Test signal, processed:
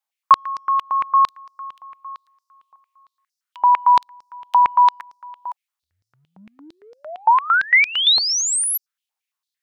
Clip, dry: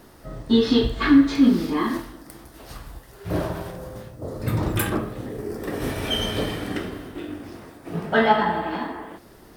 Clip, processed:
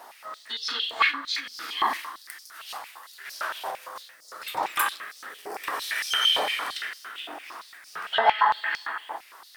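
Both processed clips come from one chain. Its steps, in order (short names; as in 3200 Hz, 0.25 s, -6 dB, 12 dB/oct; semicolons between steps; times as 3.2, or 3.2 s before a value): compressor 6:1, threshold -21 dBFS; stepped high-pass 8.8 Hz 820–5200 Hz; gain +2 dB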